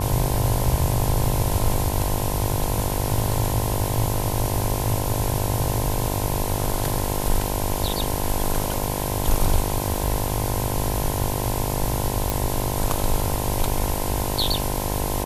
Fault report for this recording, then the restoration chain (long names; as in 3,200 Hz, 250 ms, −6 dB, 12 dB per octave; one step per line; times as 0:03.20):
mains buzz 50 Hz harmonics 21 −28 dBFS
0:12.30: click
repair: click removal
hum removal 50 Hz, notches 21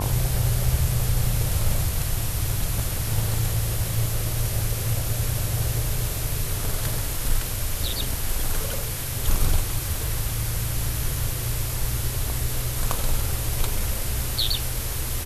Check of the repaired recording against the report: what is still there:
none of them is left